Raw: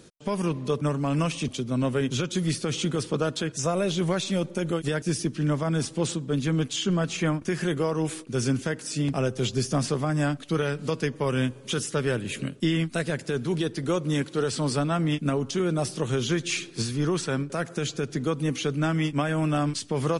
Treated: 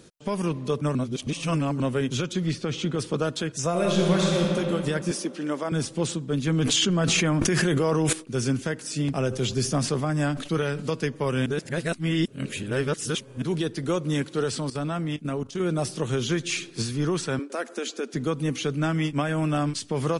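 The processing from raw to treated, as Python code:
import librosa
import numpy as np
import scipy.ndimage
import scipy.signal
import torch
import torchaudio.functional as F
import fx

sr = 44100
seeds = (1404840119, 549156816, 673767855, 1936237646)

y = fx.air_absorb(x, sr, metres=95.0, at=(2.33, 2.99))
y = fx.reverb_throw(y, sr, start_s=3.69, length_s=0.78, rt60_s=2.8, drr_db=-2.0)
y = fx.highpass(y, sr, hz=240.0, slope=24, at=(5.11, 5.72))
y = fx.env_flatten(y, sr, amount_pct=100, at=(6.47, 8.13))
y = fx.sustainer(y, sr, db_per_s=88.0, at=(9.28, 10.89))
y = fx.level_steps(y, sr, step_db=14, at=(14.58, 15.59), fade=0.02)
y = fx.ellip_highpass(y, sr, hz=230.0, order=4, stop_db=40, at=(17.39, 18.14))
y = fx.edit(y, sr, fx.reverse_span(start_s=0.95, length_s=0.85),
    fx.reverse_span(start_s=11.46, length_s=1.96), tone=tone)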